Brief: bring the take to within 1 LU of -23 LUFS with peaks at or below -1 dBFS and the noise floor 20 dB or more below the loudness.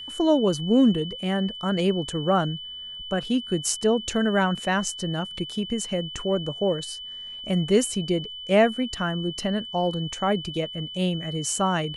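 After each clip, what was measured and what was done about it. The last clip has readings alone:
steady tone 3000 Hz; tone level -35 dBFS; loudness -25.0 LUFS; peak -7.5 dBFS; loudness target -23.0 LUFS
-> notch 3000 Hz, Q 30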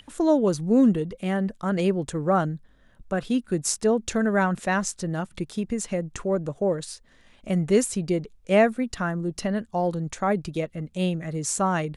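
steady tone none; loudness -25.0 LUFS; peak -7.5 dBFS; loudness target -23.0 LUFS
-> gain +2 dB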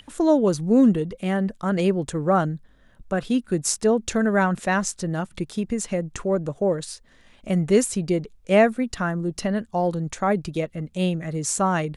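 loudness -23.0 LUFS; peak -5.5 dBFS; noise floor -55 dBFS

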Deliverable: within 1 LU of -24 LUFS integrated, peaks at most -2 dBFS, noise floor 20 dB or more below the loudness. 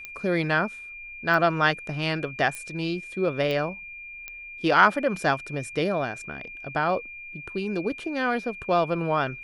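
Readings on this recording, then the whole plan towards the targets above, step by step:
clicks 5; steady tone 2400 Hz; tone level -38 dBFS; loudness -25.5 LUFS; peak -4.0 dBFS; loudness target -24.0 LUFS
-> de-click; notch 2400 Hz, Q 30; gain +1.5 dB

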